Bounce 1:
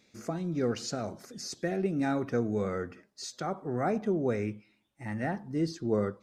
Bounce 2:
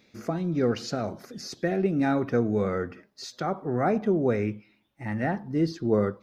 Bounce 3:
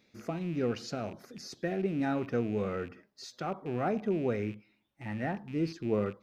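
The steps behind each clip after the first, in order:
peaking EQ 8 kHz -11.5 dB 0.83 oct; trim +5 dB
rattle on loud lows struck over -38 dBFS, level -35 dBFS; trim -6.5 dB

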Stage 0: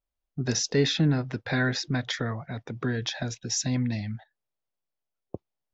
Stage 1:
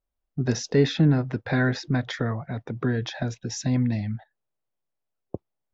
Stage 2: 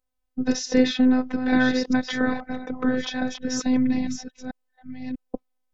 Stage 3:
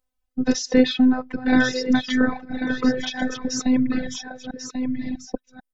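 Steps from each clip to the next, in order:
treble shelf 2.4 kHz -11.5 dB; trim +4 dB
chunks repeated in reverse 644 ms, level -7 dB; robot voice 255 Hz; trim +4.5 dB
delay 1090 ms -7.5 dB; reverb removal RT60 1.4 s; trim +3 dB

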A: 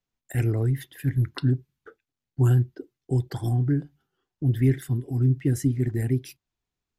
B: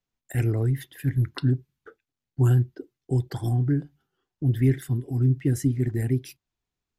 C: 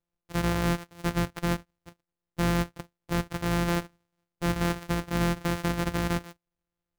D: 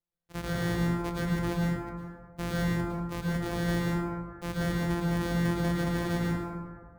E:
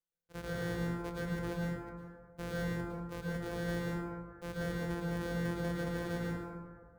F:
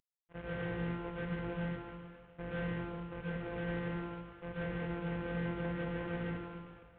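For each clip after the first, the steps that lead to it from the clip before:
no audible change
sorted samples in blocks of 256 samples; peak limiter -18.5 dBFS, peak gain reduction 7.5 dB; dynamic bell 1.6 kHz, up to +4 dB, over -42 dBFS, Q 1; trim -2 dB
plate-style reverb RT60 2 s, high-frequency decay 0.3×, pre-delay 95 ms, DRR -5.5 dB; trim -8.5 dB
small resonant body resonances 480/1500 Hz, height 14 dB, ringing for 80 ms; trim -8.5 dB
CVSD coder 16 kbps; trim -1 dB

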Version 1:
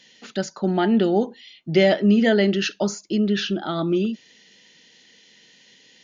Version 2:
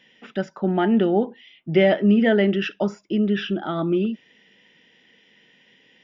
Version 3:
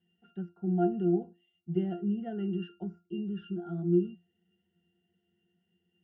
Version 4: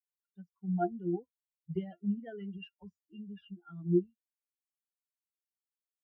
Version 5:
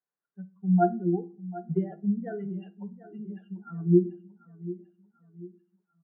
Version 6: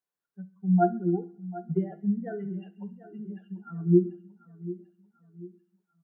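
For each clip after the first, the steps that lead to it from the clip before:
Savitzky-Golay filter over 25 samples
bass shelf 190 Hz +10.5 dB; pitch-class resonator F, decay 0.24 s; trim -4 dB
expander on every frequency bin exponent 3; dynamic bell 270 Hz, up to -5 dB, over -45 dBFS, Q 0.76; trim +4.5 dB
Chebyshev band-pass 140–1600 Hz, order 3; feedback delay 741 ms, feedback 41%, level -16 dB; simulated room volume 320 m³, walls furnished, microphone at 0.35 m; trim +8.5 dB
feedback echo behind a high-pass 67 ms, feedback 62%, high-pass 2.1 kHz, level -14 dB

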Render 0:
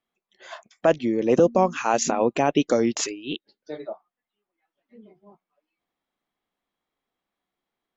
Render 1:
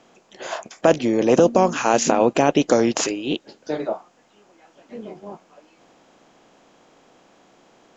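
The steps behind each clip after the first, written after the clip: spectral levelling over time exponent 0.6; trim +1 dB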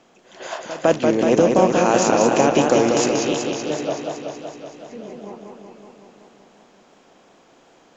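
reverse echo 155 ms -17.5 dB; modulated delay 188 ms, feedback 72%, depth 78 cents, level -4 dB; trim -1 dB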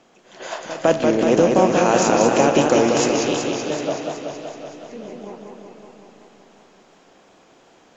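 algorithmic reverb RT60 3.5 s, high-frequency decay 0.85×, pre-delay 5 ms, DRR 11.5 dB; AAC 64 kbps 44.1 kHz

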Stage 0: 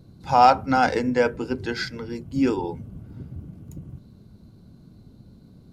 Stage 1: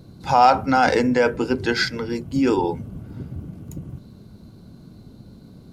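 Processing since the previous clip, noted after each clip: in parallel at -0.5 dB: compressor with a negative ratio -24 dBFS, ratio -1; on the sum: bass shelf 200 Hz -5 dB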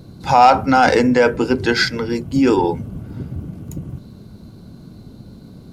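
saturation -5 dBFS, distortion -23 dB; trim +5 dB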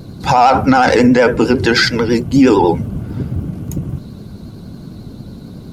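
vibrato 11 Hz 72 cents; loudness maximiser +8.5 dB; trim -1 dB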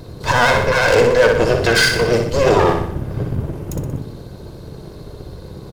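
comb filter that takes the minimum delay 1.9 ms; feedback delay 61 ms, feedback 51%, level -6 dB; trim -1 dB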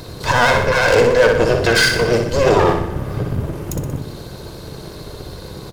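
reverberation RT60 3.1 s, pre-delay 18 ms, DRR 19 dB; tape noise reduction on one side only encoder only

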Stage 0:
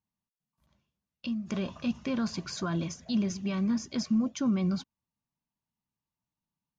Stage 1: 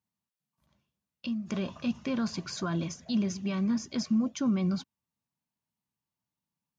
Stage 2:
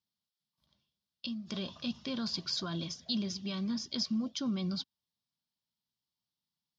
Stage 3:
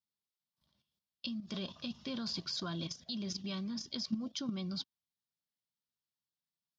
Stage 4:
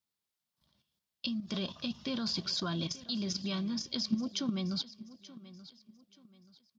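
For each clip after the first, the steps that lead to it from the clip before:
high-pass 71 Hz
high-order bell 4.1 kHz +13 dB 1 oct; trim -6.5 dB
level held to a coarse grid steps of 10 dB; trim +1.5 dB
feedback delay 881 ms, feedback 33%, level -17.5 dB; trim +4.5 dB

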